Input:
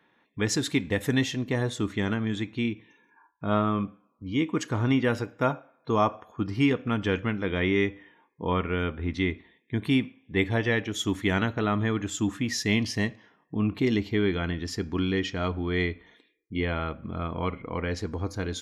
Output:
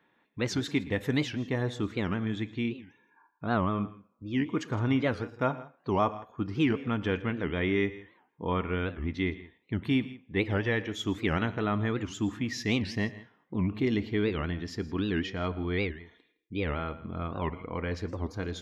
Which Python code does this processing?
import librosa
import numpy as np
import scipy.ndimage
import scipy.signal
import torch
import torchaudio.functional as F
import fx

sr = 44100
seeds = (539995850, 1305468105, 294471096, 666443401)

y = fx.peak_eq(x, sr, hz=9700.0, db=-11.5, octaves=1.2)
y = fx.echo_multitap(y, sr, ms=(115, 162), db=(-19.5, -19.0))
y = fx.record_warp(y, sr, rpm=78.0, depth_cents=250.0)
y = F.gain(torch.from_numpy(y), -3.0).numpy()